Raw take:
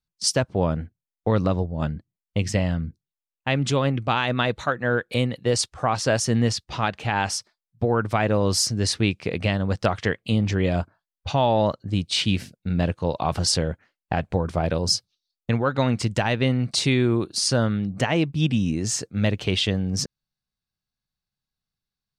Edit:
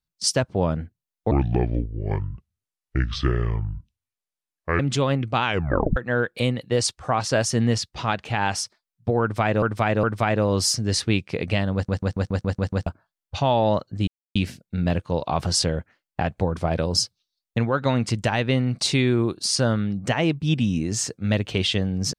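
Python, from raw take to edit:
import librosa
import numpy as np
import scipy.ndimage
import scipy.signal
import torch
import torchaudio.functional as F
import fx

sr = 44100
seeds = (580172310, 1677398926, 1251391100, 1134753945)

y = fx.edit(x, sr, fx.speed_span(start_s=1.31, length_s=2.23, speed=0.64),
    fx.tape_stop(start_s=4.19, length_s=0.52),
    fx.repeat(start_s=7.96, length_s=0.41, count=3),
    fx.stutter_over(start_s=9.67, slice_s=0.14, count=8),
    fx.silence(start_s=12.0, length_s=0.28), tone=tone)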